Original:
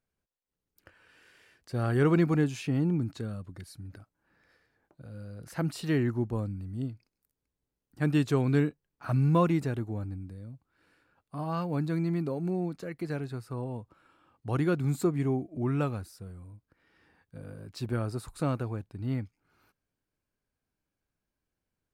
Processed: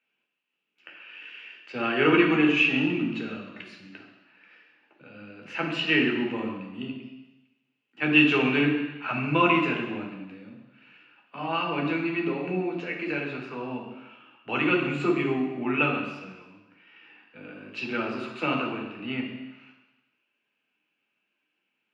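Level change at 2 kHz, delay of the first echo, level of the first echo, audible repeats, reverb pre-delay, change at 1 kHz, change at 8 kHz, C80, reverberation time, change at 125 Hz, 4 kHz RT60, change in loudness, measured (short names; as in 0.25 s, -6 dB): +16.0 dB, none, none, none, 3 ms, +7.5 dB, n/a, 6.5 dB, 1.0 s, -7.0 dB, 1.2 s, +4.5 dB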